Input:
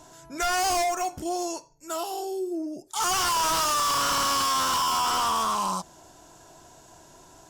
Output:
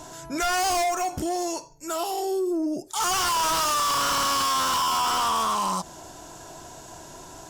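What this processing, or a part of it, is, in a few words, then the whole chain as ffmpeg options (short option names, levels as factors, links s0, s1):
soft clipper into limiter: -af "asoftclip=type=tanh:threshold=0.075,alimiter=level_in=1.88:limit=0.0631:level=0:latency=1:release=74,volume=0.531,volume=2.66"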